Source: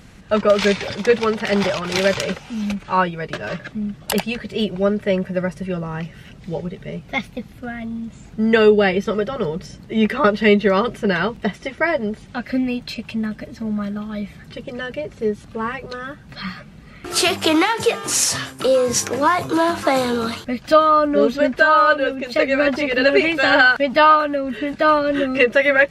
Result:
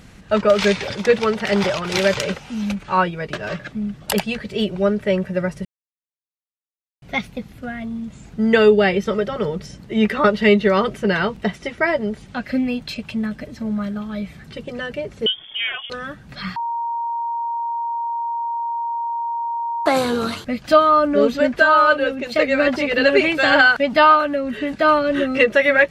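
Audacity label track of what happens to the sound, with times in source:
5.650000	7.020000	mute
15.260000	15.900000	inverted band carrier 3400 Hz
16.560000	19.860000	bleep 934 Hz -21 dBFS

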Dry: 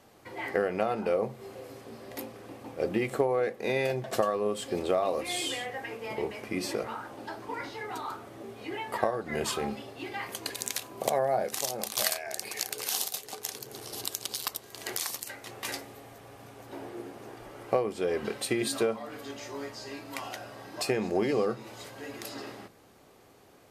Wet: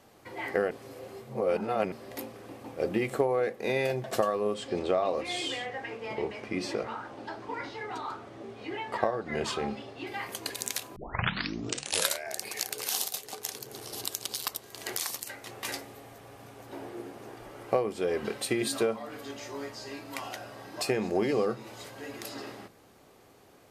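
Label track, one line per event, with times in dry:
0.710000	1.920000	reverse
4.540000	10.070000	LPF 6000 Hz
10.960000	10.960000	tape start 1.30 s

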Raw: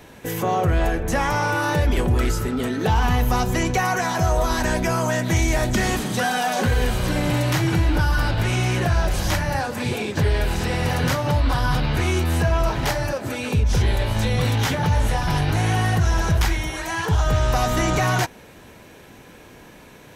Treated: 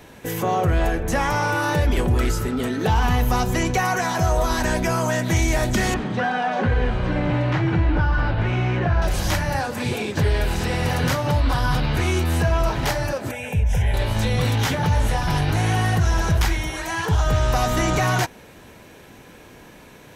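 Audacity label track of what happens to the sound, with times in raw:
5.940000	9.020000	LPF 2300 Hz
13.310000	13.940000	fixed phaser centre 1200 Hz, stages 6

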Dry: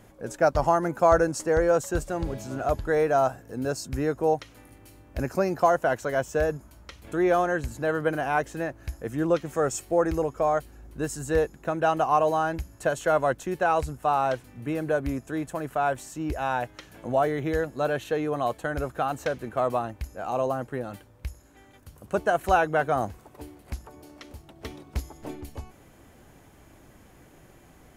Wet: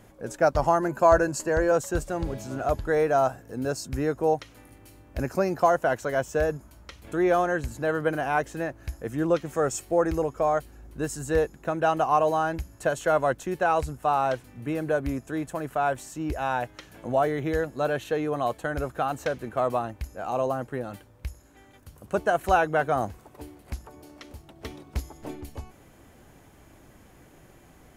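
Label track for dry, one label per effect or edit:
0.800000	1.720000	ripple EQ crests per octave 1.4, crest to trough 7 dB

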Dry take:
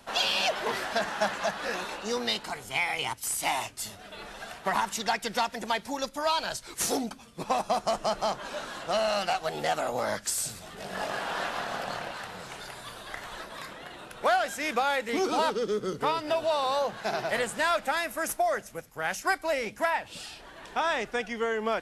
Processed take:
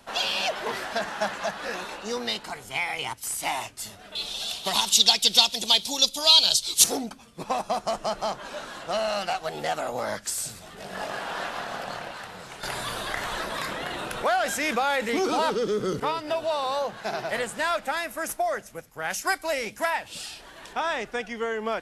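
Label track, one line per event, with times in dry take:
4.150000	6.840000	resonant high shelf 2500 Hz +12.5 dB, Q 3
12.630000	16.000000	fast leveller amount 50%
19.100000	20.730000	high shelf 3300 Hz +7.5 dB

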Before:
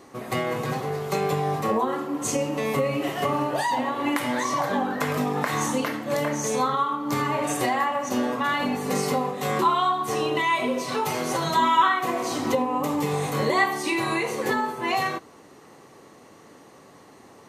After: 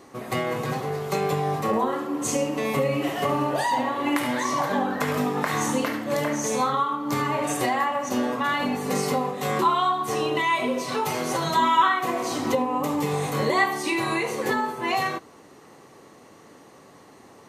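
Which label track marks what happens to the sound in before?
1.660000	6.800000	echo 72 ms -9.5 dB

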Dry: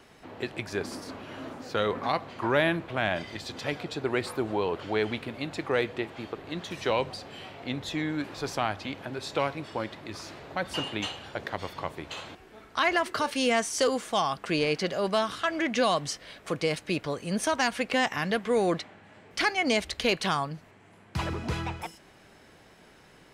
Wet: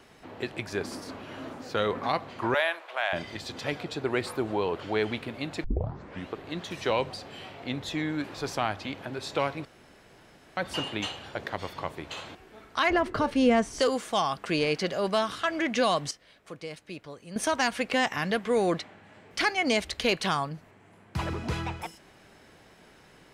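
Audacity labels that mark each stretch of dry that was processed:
2.540000	3.130000	HPF 590 Hz 24 dB/oct
5.640000	5.640000	tape start 0.71 s
9.650000	10.570000	room tone
12.900000	13.800000	tilt -3.5 dB/oct
16.110000	17.360000	gain -11.5 dB
20.490000	21.280000	bell 4400 Hz -3 dB 2.4 oct

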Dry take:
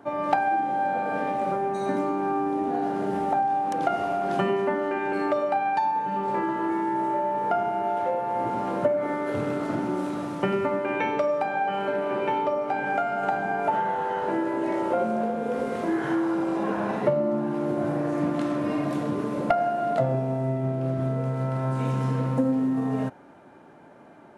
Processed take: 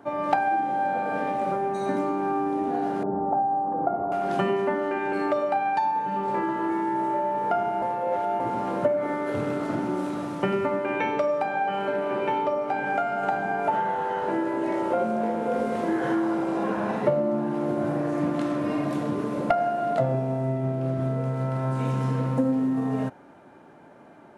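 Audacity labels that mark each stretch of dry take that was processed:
3.030000	4.120000	LPF 1100 Hz 24 dB/oct
7.820000	8.400000	reverse
14.690000	15.580000	echo throw 0.54 s, feedback 70%, level -8.5 dB

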